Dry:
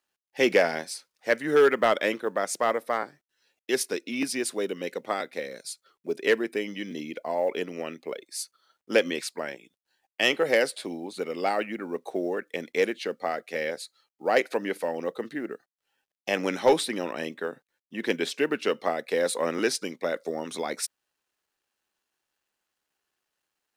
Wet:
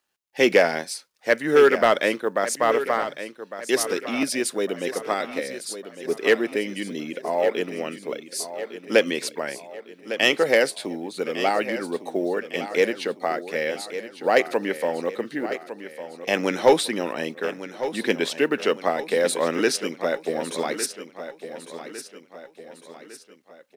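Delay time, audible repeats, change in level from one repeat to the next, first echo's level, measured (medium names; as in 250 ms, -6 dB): 1155 ms, 4, -6.5 dB, -12.0 dB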